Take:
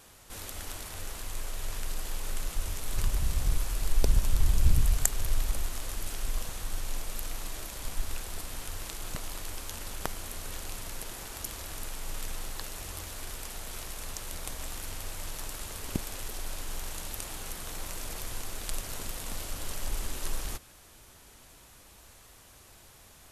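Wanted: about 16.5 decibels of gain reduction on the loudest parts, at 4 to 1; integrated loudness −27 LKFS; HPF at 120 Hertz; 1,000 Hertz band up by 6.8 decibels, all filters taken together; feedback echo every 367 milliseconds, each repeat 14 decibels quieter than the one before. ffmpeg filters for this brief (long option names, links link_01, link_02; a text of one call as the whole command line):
ffmpeg -i in.wav -af "highpass=120,equalizer=frequency=1000:width_type=o:gain=8.5,acompressor=threshold=-43dB:ratio=4,aecho=1:1:367|734:0.2|0.0399,volume=17.5dB" out.wav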